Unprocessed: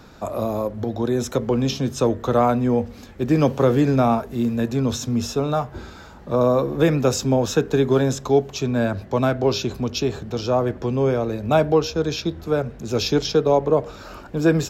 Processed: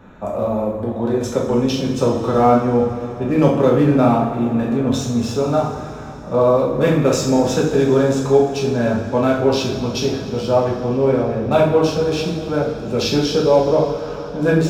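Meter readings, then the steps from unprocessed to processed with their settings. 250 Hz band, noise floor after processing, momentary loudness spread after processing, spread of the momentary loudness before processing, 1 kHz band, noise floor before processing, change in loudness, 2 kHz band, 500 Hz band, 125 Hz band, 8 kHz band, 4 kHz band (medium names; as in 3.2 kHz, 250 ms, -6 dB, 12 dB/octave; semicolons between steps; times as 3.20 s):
+3.5 dB, -29 dBFS, 8 LU, 8 LU, +4.0 dB, -42 dBFS, +3.5 dB, +3.0 dB, +4.0 dB, +2.0 dB, +1.0 dB, +2.5 dB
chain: local Wiener filter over 9 samples; two-slope reverb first 0.55 s, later 3.9 s, from -15 dB, DRR -4.5 dB; trim -1.5 dB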